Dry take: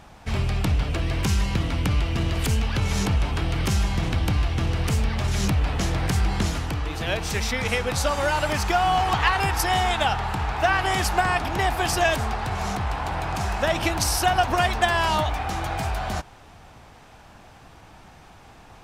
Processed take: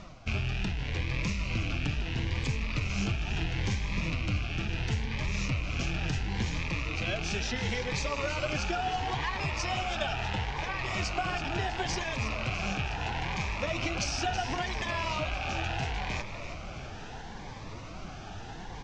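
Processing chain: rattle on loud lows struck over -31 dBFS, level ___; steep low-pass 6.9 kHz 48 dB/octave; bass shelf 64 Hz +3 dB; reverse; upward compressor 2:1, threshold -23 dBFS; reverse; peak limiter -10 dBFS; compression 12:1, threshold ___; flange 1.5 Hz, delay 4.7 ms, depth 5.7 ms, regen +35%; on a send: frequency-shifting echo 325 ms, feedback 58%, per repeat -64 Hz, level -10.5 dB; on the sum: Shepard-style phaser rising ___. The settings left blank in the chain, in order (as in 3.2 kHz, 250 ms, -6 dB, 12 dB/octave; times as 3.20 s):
-15 dBFS, -22 dBFS, 0.73 Hz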